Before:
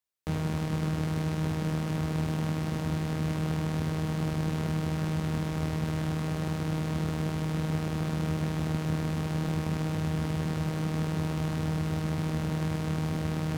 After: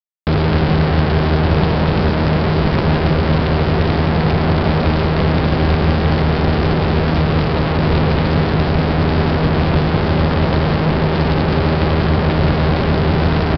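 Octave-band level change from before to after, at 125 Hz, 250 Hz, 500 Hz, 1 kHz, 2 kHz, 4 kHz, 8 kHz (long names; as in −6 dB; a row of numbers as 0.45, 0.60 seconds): +14.0 dB, +13.5 dB, +19.5 dB, +19.0 dB, +18.5 dB, +17.5 dB, can't be measured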